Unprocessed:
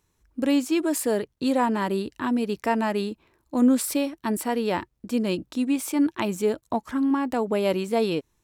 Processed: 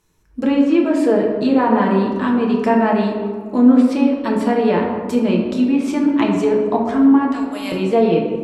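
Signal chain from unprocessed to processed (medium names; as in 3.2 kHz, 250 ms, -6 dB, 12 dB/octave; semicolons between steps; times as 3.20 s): 7.32–7.72 s: amplifier tone stack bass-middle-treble 10-0-10; low-pass that closes with the level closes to 2.1 kHz, closed at -19.5 dBFS; reverberation RT60 2.0 s, pre-delay 5 ms, DRR -1 dB; trim +4.5 dB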